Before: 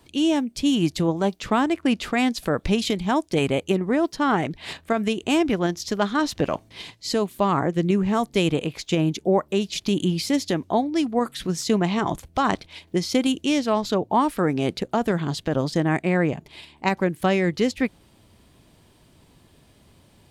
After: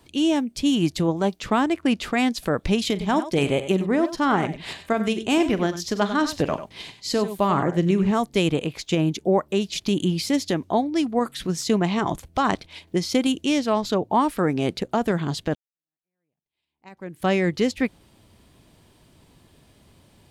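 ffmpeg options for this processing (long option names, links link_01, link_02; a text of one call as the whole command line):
ffmpeg -i in.wav -filter_complex "[0:a]asettb=1/sr,asplit=3[link_01][link_02][link_03];[link_01]atrim=end=2.914[link_04];[link_02]atrim=start=2.91:end=8.11,asetpts=PTS-STARTPTS,afade=type=in:duration=0.004:curve=qsin,afade=type=out:start_time=5.196:duration=0.004:curve=qsin,aecho=1:1:42|95|100:0.178|0.237|0.119,atrim=end_sample=229320[link_05];[link_03]atrim=start=8.106[link_06];[link_04][link_05]acrossfade=duration=0.004:curve1=hsin:curve2=qsin[link_07];[link_07][link_06]acrossfade=duration=0.004:curve1=qsin:curve2=hsin,asplit=2[link_08][link_09];[link_08]atrim=end=15.55,asetpts=PTS-STARTPTS,afade=type=out:start_time=15.546:duration=0.004:curve=hsin[link_10];[link_09]atrim=start=15.55,asetpts=PTS-STARTPTS,afade=type=in:duration=1.74:curve=exp[link_11];[link_10][link_11]concat=n=2:v=0:a=1" out.wav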